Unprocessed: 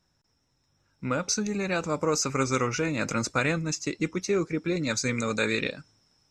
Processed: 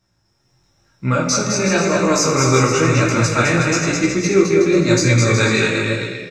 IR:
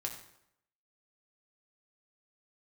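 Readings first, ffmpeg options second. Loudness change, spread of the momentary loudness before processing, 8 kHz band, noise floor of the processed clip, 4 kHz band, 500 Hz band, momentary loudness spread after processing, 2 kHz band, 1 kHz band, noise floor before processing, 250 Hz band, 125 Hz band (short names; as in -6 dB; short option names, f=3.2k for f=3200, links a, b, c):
+12.0 dB, 5 LU, +11.0 dB, -64 dBFS, +11.5 dB, +12.5 dB, 5 LU, +11.5 dB, +11.5 dB, -72 dBFS, +12.0 dB, +15.5 dB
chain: -filter_complex "[0:a]aecho=1:1:210|367.5|485.6|574.2|640.7:0.631|0.398|0.251|0.158|0.1,dynaudnorm=f=120:g=7:m=4dB,flanger=delay=15.5:depth=7.4:speed=0.98[a];[1:a]atrim=start_sample=2205[b];[a][b]afir=irnorm=-1:irlink=0,volume=8.5dB"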